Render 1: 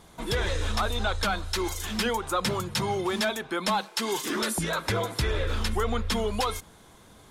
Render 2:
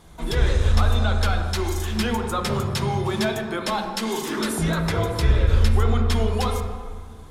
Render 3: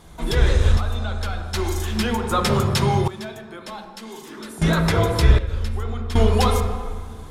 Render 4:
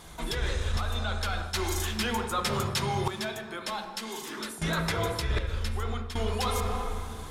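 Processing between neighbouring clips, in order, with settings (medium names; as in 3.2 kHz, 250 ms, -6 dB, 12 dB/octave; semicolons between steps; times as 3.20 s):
on a send at -3 dB: RIAA curve playback + reverberation RT60 1.8 s, pre-delay 12 ms
random-step tremolo 1.3 Hz, depth 85%; trim +5.5 dB
tilt shelf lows -4 dB, about 750 Hz; reverse; compression 6:1, threshold -26 dBFS, peak gain reduction 14.5 dB; reverse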